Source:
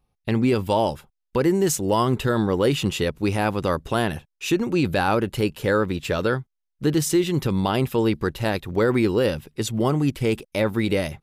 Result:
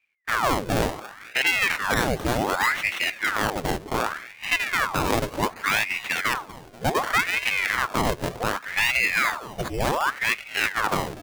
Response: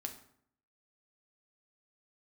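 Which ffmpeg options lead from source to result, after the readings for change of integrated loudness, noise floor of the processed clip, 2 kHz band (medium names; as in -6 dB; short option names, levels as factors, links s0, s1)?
-1.0 dB, -45 dBFS, +8.5 dB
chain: -af "aecho=1:1:242|484|726|968|1210:0.133|0.0773|0.0449|0.026|0.0151,acrusher=samples=30:mix=1:aa=0.000001:lfo=1:lforange=30:lforate=0.29,aeval=exprs='val(0)*sin(2*PI*1300*n/s+1300*0.85/0.67*sin(2*PI*0.67*n/s))':c=same"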